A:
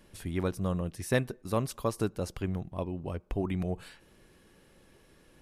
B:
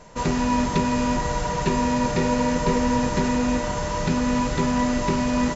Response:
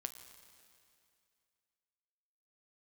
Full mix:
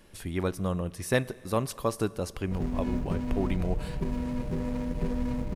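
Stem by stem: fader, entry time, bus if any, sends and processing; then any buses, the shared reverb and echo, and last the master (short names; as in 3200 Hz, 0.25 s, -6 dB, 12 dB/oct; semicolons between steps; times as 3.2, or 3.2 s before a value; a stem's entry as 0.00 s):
0.0 dB, 0.00 s, send -5 dB, low shelf 190 Hz -6.5 dB
-13.0 dB, 2.35 s, no send, median filter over 41 samples; low shelf 410 Hz +5 dB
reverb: on, RT60 2.5 s, pre-delay 7 ms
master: low shelf 67 Hz +8.5 dB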